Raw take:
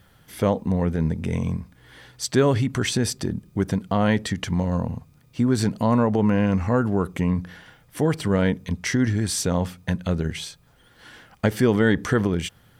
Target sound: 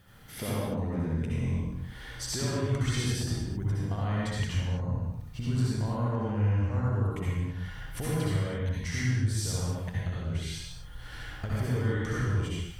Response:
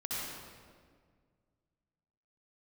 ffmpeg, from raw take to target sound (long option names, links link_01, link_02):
-filter_complex "[0:a]asubboost=boost=10:cutoff=71,acompressor=threshold=-31dB:ratio=6[link_01];[1:a]atrim=start_sample=2205,afade=type=out:start_time=0.39:duration=0.01,atrim=end_sample=17640[link_02];[link_01][link_02]afir=irnorm=-1:irlink=0"